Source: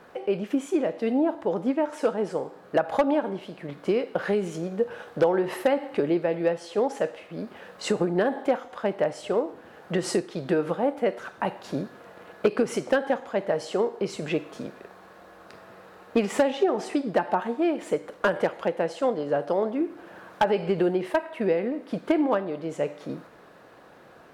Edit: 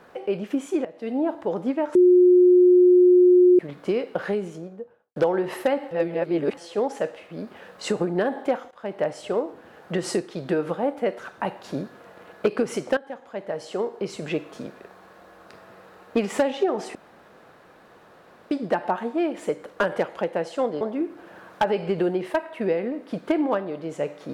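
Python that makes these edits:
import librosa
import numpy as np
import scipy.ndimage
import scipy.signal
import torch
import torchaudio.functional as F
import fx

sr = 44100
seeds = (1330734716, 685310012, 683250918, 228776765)

y = fx.studio_fade_out(x, sr, start_s=4.13, length_s=1.03)
y = fx.edit(y, sr, fx.fade_in_from(start_s=0.85, length_s=0.42, floor_db=-16.0),
    fx.bleep(start_s=1.95, length_s=1.64, hz=360.0, db=-11.0),
    fx.reverse_span(start_s=5.91, length_s=0.66),
    fx.fade_in_from(start_s=8.71, length_s=0.33, floor_db=-19.0),
    fx.fade_in_from(start_s=12.97, length_s=1.58, curve='qsin', floor_db=-16.0),
    fx.insert_room_tone(at_s=16.95, length_s=1.56),
    fx.cut(start_s=19.25, length_s=0.36), tone=tone)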